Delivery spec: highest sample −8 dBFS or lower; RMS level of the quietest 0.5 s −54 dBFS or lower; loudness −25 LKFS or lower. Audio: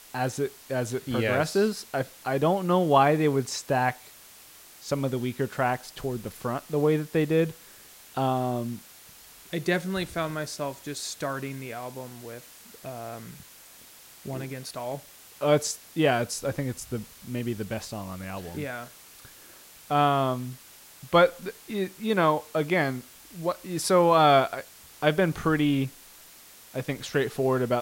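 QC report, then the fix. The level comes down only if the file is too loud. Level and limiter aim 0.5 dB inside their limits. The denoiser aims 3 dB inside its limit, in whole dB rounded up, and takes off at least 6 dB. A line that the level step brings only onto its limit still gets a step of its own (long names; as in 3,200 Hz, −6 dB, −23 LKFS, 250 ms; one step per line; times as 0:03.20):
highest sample −7.0 dBFS: out of spec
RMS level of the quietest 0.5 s −50 dBFS: out of spec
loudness −27.0 LKFS: in spec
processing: broadband denoise 7 dB, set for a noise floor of −50 dBFS
brickwall limiter −8.5 dBFS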